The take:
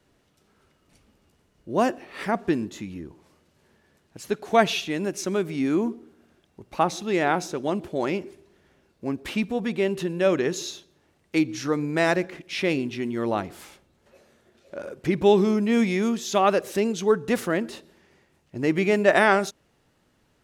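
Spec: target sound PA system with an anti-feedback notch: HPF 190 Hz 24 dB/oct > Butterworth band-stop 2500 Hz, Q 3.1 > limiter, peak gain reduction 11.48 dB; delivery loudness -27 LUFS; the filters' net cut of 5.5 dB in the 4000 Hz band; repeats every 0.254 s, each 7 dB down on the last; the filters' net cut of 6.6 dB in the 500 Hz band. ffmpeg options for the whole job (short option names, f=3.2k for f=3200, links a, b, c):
-af "highpass=f=190:w=0.5412,highpass=f=190:w=1.3066,asuperstop=centerf=2500:order=8:qfactor=3.1,equalizer=f=500:t=o:g=-9,equalizer=f=4k:t=o:g=-6,aecho=1:1:254|508|762|1016|1270:0.447|0.201|0.0905|0.0407|0.0183,volume=3.5dB,alimiter=limit=-15dB:level=0:latency=1"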